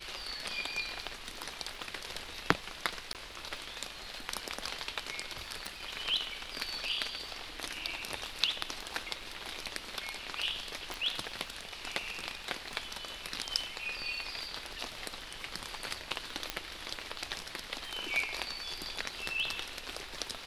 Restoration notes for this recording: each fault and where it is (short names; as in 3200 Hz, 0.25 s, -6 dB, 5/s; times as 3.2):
crackle 29/s -44 dBFS
3.13–3.15 gap 18 ms
5.66 pop
10.94 pop
16.5 pop -15 dBFS